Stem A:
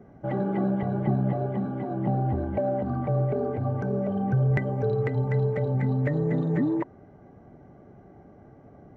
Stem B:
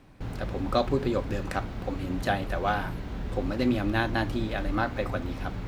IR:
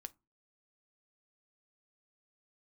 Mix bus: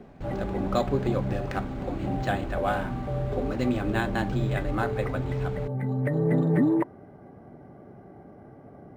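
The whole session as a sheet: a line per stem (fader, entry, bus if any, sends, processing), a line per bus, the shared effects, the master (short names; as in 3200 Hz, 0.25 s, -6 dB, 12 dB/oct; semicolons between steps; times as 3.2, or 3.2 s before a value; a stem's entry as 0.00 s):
+2.5 dB, 0.00 s, send -11 dB, low shelf 70 Hz -9 dB; auto duck -11 dB, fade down 0.40 s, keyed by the second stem
-1.0 dB, 0.00 s, no send, dry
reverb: on, RT60 0.25 s, pre-delay 5 ms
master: decimation joined by straight lines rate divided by 4×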